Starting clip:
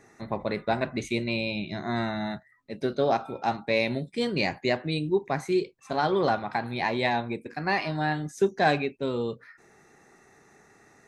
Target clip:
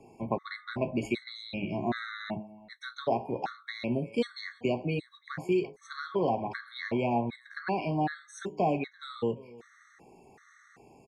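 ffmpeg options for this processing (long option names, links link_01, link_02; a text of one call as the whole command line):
ffmpeg -i in.wav -filter_complex "[0:a]acrossover=split=140|660[link_01][link_02][link_03];[link_01]acompressor=threshold=-47dB:ratio=4[link_04];[link_02]acompressor=threshold=-30dB:ratio=4[link_05];[link_03]acompressor=threshold=-35dB:ratio=4[link_06];[link_04][link_05][link_06]amix=inputs=3:normalize=0,highshelf=frequency=3700:gain=-6.5,asplit=2[link_07][link_08];[link_08]adelay=17,volume=-13.5dB[link_09];[link_07][link_09]amix=inputs=2:normalize=0,bandreject=frequency=105.5:width_type=h:width=4,bandreject=frequency=211:width_type=h:width=4,bandreject=frequency=316.5:width_type=h:width=4,bandreject=frequency=422:width_type=h:width=4,bandreject=frequency=527.5:width_type=h:width=4,bandreject=frequency=633:width_type=h:width=4,bandreject=frequency=738.5:width_type=h:width=4,bandreject=frequency=844:width_type=h:width=4,bandreject=frequency=949.5:width_type=h:width=4,asplit=2[link_10][link_11];[link_11]aecho=0:1:339:0.075[link_12];[link_10][link_12]amix=inputs=2:normalize=0,afftfilt=real='re*gt(sin(2*PI*1.3*pts/sr)*(1-2*mod(floor(b*sr/1024/1100),2)),0)':imag='im*gt(sin(2*PI*1.3*pts/sr)*(1-2*mod(floor(b*sr/1024/1100),2)),0)':win_size=1024:overlap=0.75,volume=3.5dB" out.wav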